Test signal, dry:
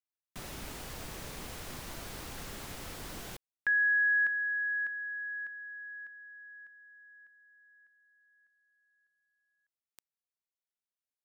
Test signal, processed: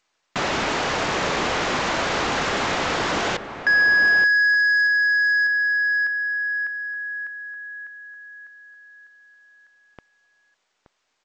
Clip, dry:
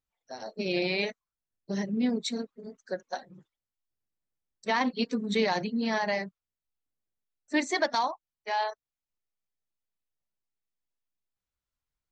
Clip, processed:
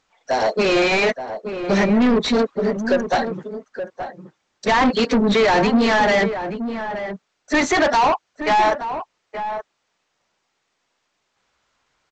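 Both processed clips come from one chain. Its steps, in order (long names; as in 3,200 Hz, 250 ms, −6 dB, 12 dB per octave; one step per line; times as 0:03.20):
mid-hump overdrive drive 32 dB, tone 1,600 Hz, clips at −13.5 dBFS
slap from a distant wall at 150 metres, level −9 dB
level +5.5 dB
G.722 64 kbit/s 16,000 Hz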